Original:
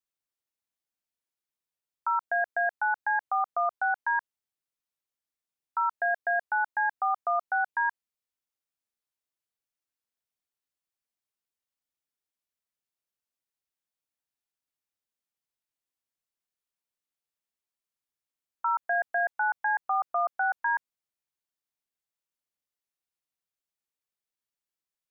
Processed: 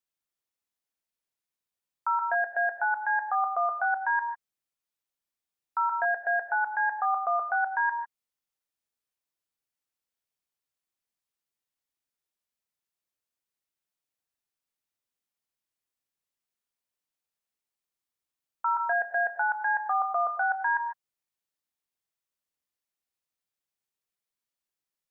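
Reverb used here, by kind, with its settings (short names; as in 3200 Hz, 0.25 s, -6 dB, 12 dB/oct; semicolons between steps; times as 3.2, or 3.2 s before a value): non-linear reverb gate 0.17 s rising, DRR 6.5 dB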